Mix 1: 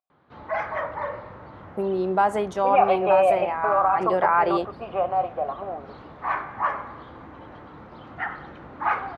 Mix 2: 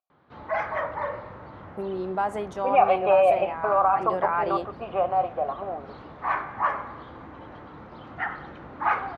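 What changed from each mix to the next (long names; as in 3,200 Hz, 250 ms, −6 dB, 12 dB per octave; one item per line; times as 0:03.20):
first voice −6.0 dB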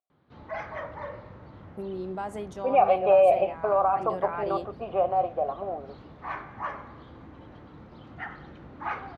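second voice: add parametric band 580 Hz +7.5 dB 2.1 octaves
master: add parametric band 1,100 Hz −9.5 dB 2.8 octaves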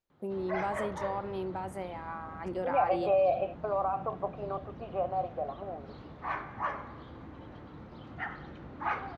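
first voice: entry −1.55 s
second voice −7.5 dB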